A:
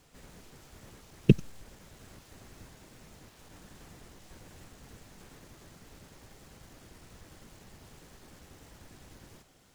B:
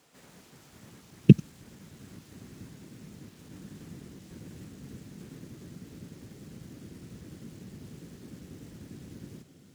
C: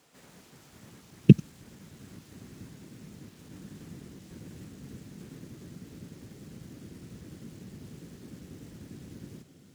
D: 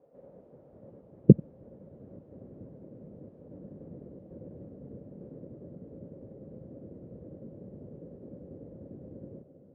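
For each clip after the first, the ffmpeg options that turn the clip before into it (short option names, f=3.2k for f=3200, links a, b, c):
-af "highpass=190,asubboost=boost=11:cutoff=240"
-af anull
-af "lowpass=f=550:t=q:w=6.4,volume=-2.5dB"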